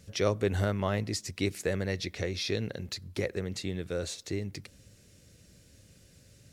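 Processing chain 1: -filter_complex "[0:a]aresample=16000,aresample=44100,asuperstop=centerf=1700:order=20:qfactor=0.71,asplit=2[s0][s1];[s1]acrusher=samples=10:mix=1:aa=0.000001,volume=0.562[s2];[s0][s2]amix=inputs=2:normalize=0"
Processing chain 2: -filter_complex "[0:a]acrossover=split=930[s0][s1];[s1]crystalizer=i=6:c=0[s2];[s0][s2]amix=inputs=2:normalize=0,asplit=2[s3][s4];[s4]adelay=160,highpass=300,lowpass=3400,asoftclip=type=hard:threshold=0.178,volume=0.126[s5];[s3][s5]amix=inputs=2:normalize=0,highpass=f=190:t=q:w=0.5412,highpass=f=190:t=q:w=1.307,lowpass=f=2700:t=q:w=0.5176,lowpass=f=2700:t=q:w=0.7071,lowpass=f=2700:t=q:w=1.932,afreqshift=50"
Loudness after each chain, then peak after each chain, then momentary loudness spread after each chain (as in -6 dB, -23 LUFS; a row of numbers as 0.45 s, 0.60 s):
-30.0 LUFS, -33.5 LUFS; -11.0 dBFS, -14.0 dBFS; 8 LU, 10 LU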